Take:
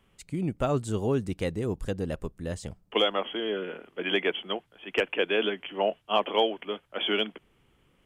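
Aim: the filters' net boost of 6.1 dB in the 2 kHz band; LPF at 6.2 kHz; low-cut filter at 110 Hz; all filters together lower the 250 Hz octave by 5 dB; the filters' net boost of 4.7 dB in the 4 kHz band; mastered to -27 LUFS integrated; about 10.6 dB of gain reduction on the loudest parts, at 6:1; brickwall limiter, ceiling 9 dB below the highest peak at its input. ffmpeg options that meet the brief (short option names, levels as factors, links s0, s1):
-af "highpass=110,lowpass=6200,equalizer=f=250:t=o:g=-7,equalizer=f=2000:t=o:g=7,equalizer=f=4000:t=o:g=3.5,acompressor=threshold=0.0355:ratio=6,volume=2.82,alimiter=limit=0.188:level=0:latency=1"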